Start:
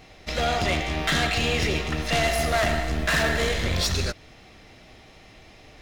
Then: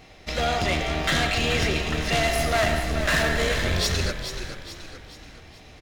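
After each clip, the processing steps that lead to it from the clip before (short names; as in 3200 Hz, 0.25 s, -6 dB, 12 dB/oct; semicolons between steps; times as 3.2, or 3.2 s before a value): frequency-shifting echo 0.428 s, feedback 46%, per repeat -41 Hz, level -9 dB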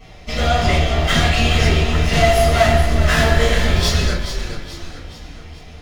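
reverb RT60 0.35 s, pre-delay 5 ms, DRR -7.5 dB; gain -8 dB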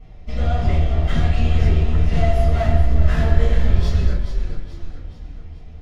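tilt -3 dB/oct; gain -11 dB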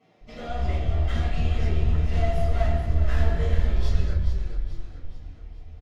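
bands offset in time highs, lows 0.21 s, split 180 Hz; gain -6 dB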